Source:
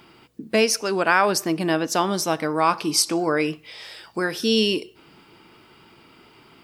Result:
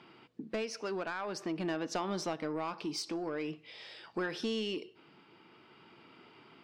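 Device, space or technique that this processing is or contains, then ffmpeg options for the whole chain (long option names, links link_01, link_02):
AM radio: -filter_complex "[0:a]asettb=1/sr,asplit=3[link_01][link_02][link_03];[link_01]atrim=end=2.334[link_04];[link_02]atrim=start=2.33:end=4.03,asetpts=PTS-STARTPTS,afade=type=in:duration=0.004:curve=qsin,afade=type=out:start_time=1.696:duration=0.004:curve=qsin,equalizer=frequency=1300:width_type=o:width=1.7:gain=-5[link_05];[link_03]atrim=start=4.026[link_06];[link_04][link_05]acrossfade=duration=0.004:curve1=hsin:curve2=qsin[link_07];[link_07][link_06]acrossfade=duration=0.004:curve1=qsin:curve2=hsin,highpass=130,lowpass=4000,acompressor=threshold=-23dB:ratio=8,asoftclip=type=tanh:threshold=-20dB,tremolo=f=0.48:d=0.29,volume=-5.5dB"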